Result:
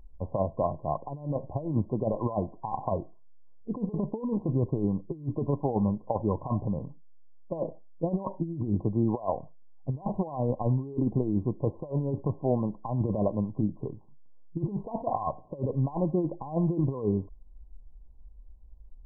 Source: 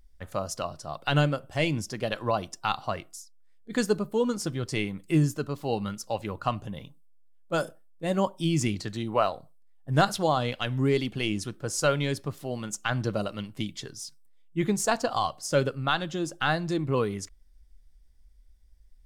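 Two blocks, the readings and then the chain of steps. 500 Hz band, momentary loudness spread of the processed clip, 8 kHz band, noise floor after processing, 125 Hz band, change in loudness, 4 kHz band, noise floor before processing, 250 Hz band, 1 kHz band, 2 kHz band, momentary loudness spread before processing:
-2.5 dB, 7 LU, under -40 dB, -49 dBFS, +0.5 dB, -2.0 dB, under -40 dB, -55 dBFS, +0.5 dB, -5.0 dB, under -40 dB, 10 LU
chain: compressor with a negative ratio -30 dBFS, ratio -0.5; brick-wall FIR low-pass 1.1 kHz; trim +3.5 dB

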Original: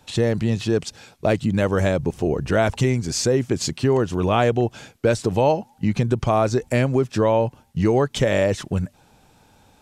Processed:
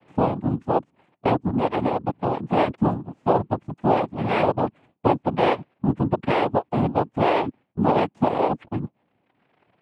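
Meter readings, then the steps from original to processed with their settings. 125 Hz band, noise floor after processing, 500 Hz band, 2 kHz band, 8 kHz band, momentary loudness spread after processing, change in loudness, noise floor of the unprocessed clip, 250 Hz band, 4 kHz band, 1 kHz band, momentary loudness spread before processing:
-5.5 dB, -70 dBFS, -3.5 dB, -4.0 dB, under -25 dB, 6 LU, -2.5 dB, -57 dBFS, -1.5 dB, -7.0 dB, +4.0 dB, 5 LU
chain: low-pass 1.1 kHz 24 dB/octave; reverb removal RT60 1.8 s; noise-vocoded speech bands 4

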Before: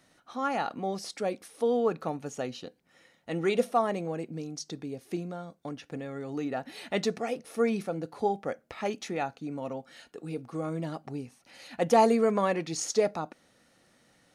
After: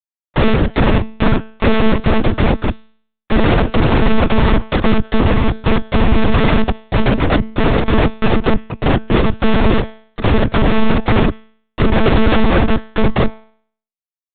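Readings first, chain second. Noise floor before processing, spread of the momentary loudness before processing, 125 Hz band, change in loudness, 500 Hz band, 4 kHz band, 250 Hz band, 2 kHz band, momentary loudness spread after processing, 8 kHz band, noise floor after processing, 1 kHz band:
-65 dBFS, 15 LU, +24.5 dB, +15.0 dB, +11.0 dB, +17.5 dB, +18.0 dB, +19.5 dB, 5 LU, under -30 dB, under -85 dBFS, +12.0 dB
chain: octave divider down 2 oct, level -4 dB; inverse Chebyshev low-pass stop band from 1.3 kHz, stop band 70 dB; phaser 0.36 Hz, delay 4.8 ms, feedback 26%; comb 6.8 ms, depth 35%; Schmitt trigger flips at -41.5 dBFS; noise-vocoded speech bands 16; de-hum 215.7 Hz, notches 29; saturation -38 dBFS, distortion -12 dB; monotone LPC vocoder at 8 kHz 220 Hz; loudness maximiser +34 dB; trim -1 dB

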